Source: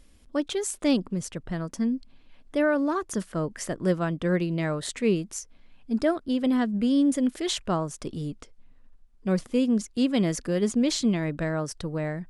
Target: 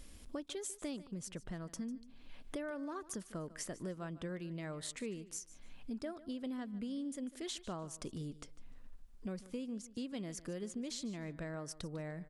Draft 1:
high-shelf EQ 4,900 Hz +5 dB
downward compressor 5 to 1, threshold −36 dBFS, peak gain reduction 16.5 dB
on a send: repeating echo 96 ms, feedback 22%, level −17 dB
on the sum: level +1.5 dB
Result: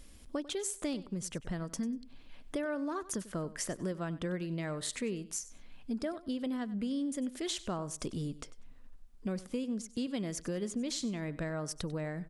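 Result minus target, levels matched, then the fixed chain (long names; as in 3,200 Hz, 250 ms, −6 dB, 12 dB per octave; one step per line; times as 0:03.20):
echo 53 ms early; downward compressor: peak gain reduction −6.5 dB
high-shelf EQ 4,900 Hz +5 dB
downward compressor 5 to 1, threshold −44 dBFS, peak gain reduction 23 dB
on a send: repeating echo 149 ms, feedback 22%, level −17 dB
on the sum: level +1.5 dB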